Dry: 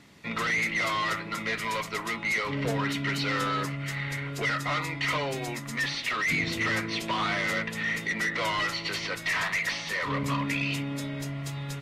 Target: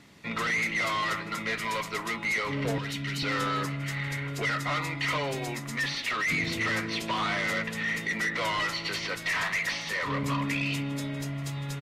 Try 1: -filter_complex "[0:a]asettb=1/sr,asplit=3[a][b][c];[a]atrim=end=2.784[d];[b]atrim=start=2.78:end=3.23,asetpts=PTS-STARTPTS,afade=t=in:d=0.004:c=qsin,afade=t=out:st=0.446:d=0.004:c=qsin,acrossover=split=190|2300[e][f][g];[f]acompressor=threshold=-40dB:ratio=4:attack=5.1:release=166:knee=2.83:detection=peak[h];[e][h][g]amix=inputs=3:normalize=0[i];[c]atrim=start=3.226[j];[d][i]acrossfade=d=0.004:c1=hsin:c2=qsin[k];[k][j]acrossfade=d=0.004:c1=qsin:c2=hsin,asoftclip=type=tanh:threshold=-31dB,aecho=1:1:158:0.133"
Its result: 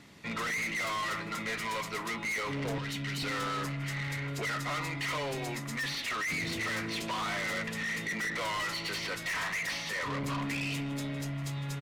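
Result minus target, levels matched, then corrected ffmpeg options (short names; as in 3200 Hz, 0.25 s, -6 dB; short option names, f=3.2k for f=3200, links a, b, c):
soft clip: distortion +15 dB
-filter_complex "[0:a]asettb=1/sr,asplit=3[a][b][c];[a]atrim=end=2.784[d];[b]atrim=start=2.78:end=3.23,asetpts=PTS-STARTPTS,afade=t=in:d=0.004:c=qsin,afade=t=out:st=0.446:d=0.004:c=qsin,acrossover=split=190|2300[e][f][g];[f]acompressor=threshold=-40dB:ratio=4:attack=5.1:release=166:knee=2.83:detection=peak[h];[e][h][g]amix=inputs=3:normalize=0[i];[c]atrim=start=3.226[j];[d][i]acrossfade=d=0.004:c1=hsin:c2=qsin[k];[k][j]acrossfade=d=0.004:c1=qsin:c2=hsin,asoftclip=type=tanh:threshold=-19dB,aecho=1:1:158:0.133"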